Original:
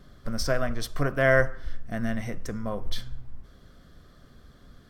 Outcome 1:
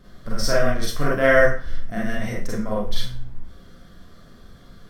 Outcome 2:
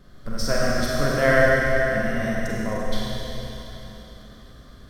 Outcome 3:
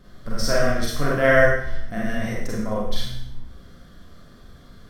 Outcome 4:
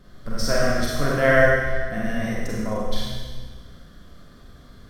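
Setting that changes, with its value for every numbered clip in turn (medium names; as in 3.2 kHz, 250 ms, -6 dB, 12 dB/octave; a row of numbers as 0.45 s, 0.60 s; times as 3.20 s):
Schroeder reverb, RT60: 0.33 s, 3.7 s, 0.72 s, 1.5 s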